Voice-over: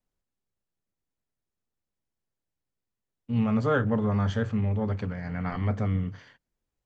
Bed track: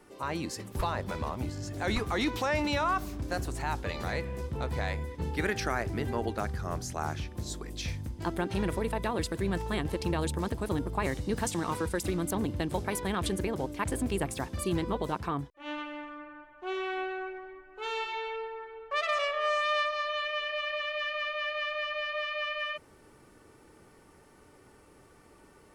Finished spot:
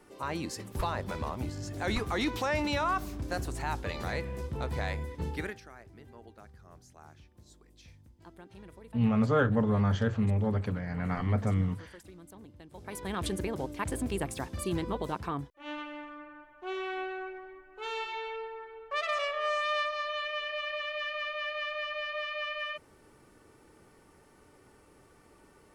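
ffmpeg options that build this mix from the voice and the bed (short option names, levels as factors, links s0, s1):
-filter_complex "[0:a]adelay=5650,volume=0.891[s0];[1:a]volume=7.08,afade=t=out:st=5.27:d=0.33:silence=0.112202,afade=t=in:st=12.73:d=0.49:silence=0.125893[s1];[s0][s1]amix=inputs=2:normalize=0"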